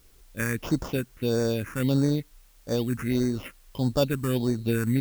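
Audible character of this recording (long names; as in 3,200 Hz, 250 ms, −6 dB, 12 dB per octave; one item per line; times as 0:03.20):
aliases and images of a low sample rate 4,100 Hz, jitter 0%
phaser sweep stages 4, 1.6 Hz, lowest notch 610–2,800 Hz
a quantiser's noise floor 10 bits, dither triangular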